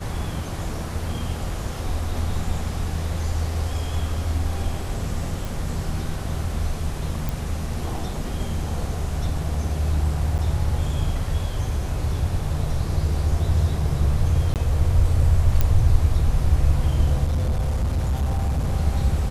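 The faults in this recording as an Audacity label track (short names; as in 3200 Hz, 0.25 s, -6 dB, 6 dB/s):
5.450000	5.450000	pop
7.290000	7.290000	pop
10.380000	10.390000	gap 8.2 ms
14.540000	14.560000	gap 18 ms
15.610000	15.610000	pop -7 dBFS
17.240000	18.730000	clipped -18.5 dBFS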